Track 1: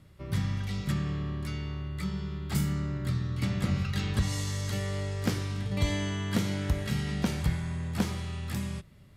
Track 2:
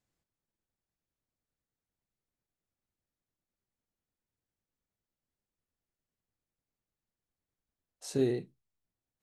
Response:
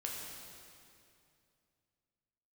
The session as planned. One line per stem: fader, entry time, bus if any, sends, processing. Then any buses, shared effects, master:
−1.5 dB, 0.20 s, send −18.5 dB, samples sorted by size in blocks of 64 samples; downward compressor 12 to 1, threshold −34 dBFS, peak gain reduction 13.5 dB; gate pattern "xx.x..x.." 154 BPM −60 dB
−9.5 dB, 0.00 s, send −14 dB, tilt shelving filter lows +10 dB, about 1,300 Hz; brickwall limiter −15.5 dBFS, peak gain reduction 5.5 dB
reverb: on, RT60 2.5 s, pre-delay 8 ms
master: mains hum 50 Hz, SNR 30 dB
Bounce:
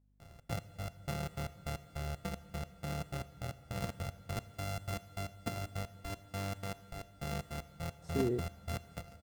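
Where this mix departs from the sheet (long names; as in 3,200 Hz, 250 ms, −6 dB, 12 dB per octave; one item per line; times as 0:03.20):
stem 2: send off
reverb return +7.0 dB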